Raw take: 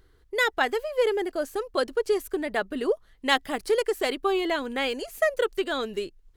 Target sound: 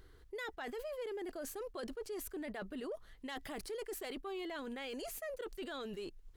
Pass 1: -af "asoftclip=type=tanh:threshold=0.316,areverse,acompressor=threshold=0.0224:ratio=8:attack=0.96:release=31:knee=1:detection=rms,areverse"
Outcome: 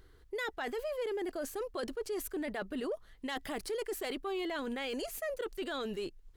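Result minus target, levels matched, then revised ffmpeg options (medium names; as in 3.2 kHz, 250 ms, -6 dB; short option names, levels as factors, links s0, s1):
compression: peak gain reduction -6 dB
-af "asoftclip=type=tanh:threshold=0.316,areverse,acompressor=threshold=0.01:ratio=8:attack=0.96:release=31:knee=1:detection=rms,areverse"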